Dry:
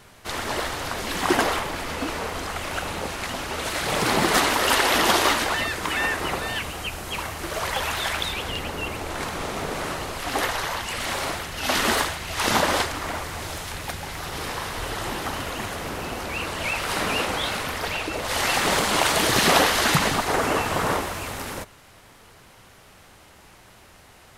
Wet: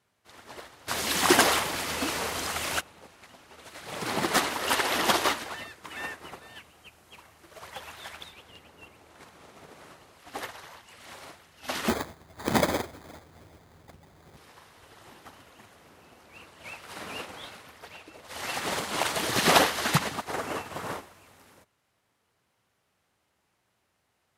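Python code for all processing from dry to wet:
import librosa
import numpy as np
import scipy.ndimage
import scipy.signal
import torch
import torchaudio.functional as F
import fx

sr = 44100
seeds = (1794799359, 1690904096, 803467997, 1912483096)

y = fx.chain(x, sr, fx.highpass(hz=41.0, slope=12),
    fx.high_shelf(hz=2900.0, db=9.0),
    fx.env_flatten(amount_pct=50), at=(0.88, 2.81))
y = fx.chain(y, sr, fx.tilt_shelf(db=7.5, hz=930.0),
    fx.echo_single(ms=206, db=-15.0),
    fx.sample_hold(seeds[0], rate_hz=2800.0, jitter_pct=0), at=(11.88, 14.37))
y = scipy.signal.sosfilt(scipy.signal.butter(2, 80.0, 'highpass', fs=sr, output='sos'), y)
y = fx.upward_expand(y, sr, threshold_db=-31.0, expansion=2.5)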